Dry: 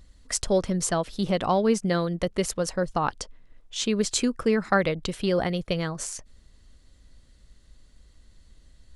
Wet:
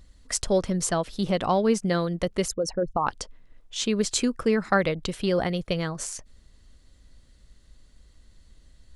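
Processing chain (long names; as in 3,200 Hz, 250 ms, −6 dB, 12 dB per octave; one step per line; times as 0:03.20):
0:02.48–0:03.07: spectral envelope exaggerated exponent 2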